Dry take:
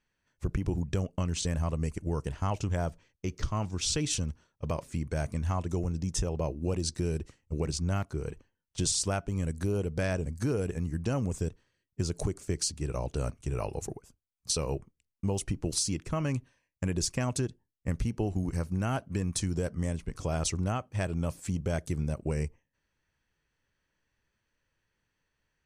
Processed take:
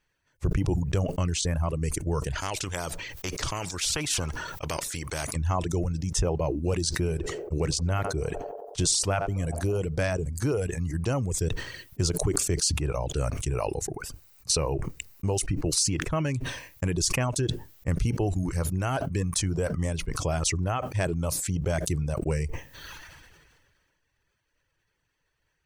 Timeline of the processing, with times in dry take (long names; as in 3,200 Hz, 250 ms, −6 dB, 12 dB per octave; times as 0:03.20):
0:02.41–0:05.36: every bin compressed towards the loudest bin 2 to 1
0:06.85–0:09.80: feedback echo with a band-pass in the loop 91 ms, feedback 83%, band-pass 640 Hz, level −13 dB
0:13.50–0:15.91: notch filter 3,300 Hz, Q 8.7
whole clip: parametric band 220 Hz −8.5 dB 0.42 octaves; reverb reduction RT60 0.72 s; level that may fall only so fast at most 31 dB per second; level +4.5 dB